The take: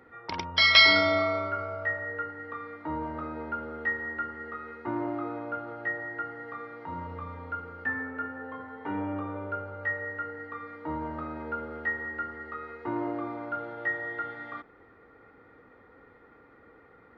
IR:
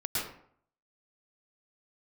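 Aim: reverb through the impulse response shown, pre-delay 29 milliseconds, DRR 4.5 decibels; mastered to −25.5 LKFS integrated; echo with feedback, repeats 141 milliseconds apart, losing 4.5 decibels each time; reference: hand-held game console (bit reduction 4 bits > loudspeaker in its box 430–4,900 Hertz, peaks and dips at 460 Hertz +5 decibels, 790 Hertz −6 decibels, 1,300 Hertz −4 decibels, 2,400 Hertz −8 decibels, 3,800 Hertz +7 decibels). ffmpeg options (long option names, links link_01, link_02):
-filter_complex "[0:a]aecho=1:1:141|282|423|564|705|846|987|1128|1269:0.596|0.357|0.214|0.129|0.0772|0.0463|0.0278|0.0167|0.01,asplit=2[link_01][link_02];[1:a]atrim=start_sample=2205,adelay=29[link_03];[link_02][link_03]afir=irnorm=-1:irlink=0,volume=-11dB[link_04];[link_01][link_04]amix=inputs=2:normalize=0,acrusher=bits=3:mix=0:aa=0.000001,highpass=430,equalizer=frequency=460:width_type=q:width=4:gain=5,equalizer=frequency=790:width_type=q:width=4:gain=-6,equalizer=frequency=1300:width_type=q:width=4:gain=-4,equalizer=frequency=2400:width_type=q:width=4:gain=-8,equalizer=frequency=3800:width_type=q:width=4:gain=7,lowpass=frequency=4900:width=0.5412,lowpass=frequency=4900:width=1.3066,volume=-1.5dB"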